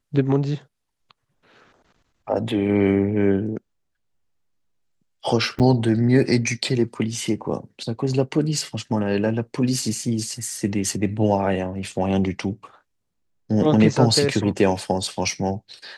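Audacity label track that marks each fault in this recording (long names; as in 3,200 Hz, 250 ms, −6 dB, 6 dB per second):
5.590000	5.600000	drop-out 8.2 ms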